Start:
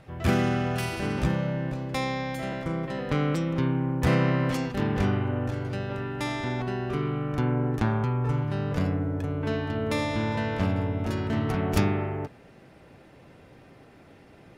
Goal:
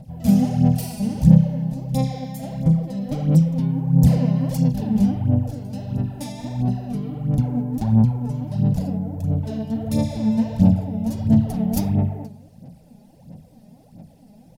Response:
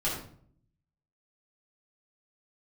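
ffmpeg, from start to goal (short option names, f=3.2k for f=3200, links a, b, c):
-filter_complex "[0:a]firequalizer=gain_entry='entry(100,0);entry(160,9);entry(230,7);entry(370,-14);entry(520,-1);entry(800,-2);entry(1200,-21);entry(4700,0);entry(13000,10)':delay=0.05:min_phase=1,asplit=2[a][b];[1:a]atrim=start_sample=2205[c];[b][c]afir=irnorm=-1:irlink=0,volume=-20.5dB[d];[a][d]amix=inputs=2:normalize=0,aphaser=in_gain=1:out_gain=1:delay=4.9:decay=0.66:speed=1.5:type=sinusoidal,volume=-1.5dB"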